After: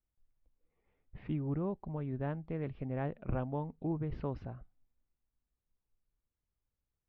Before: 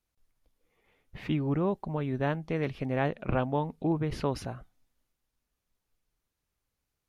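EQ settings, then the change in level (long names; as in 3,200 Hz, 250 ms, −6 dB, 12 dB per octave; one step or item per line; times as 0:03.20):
high-frequency loss of the air 140 metres
head-to-tape spacing loss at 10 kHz 26 dB
low-shelf EQ 120 Hz +7 dB
−7.5 dB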